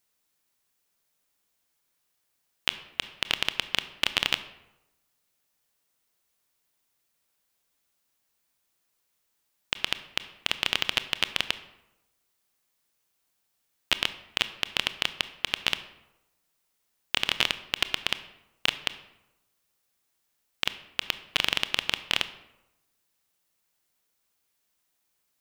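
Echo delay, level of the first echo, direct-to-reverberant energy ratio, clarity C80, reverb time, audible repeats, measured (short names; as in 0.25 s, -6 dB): none, none, 12.0 dB, 16.0 dB, 0.95 s, none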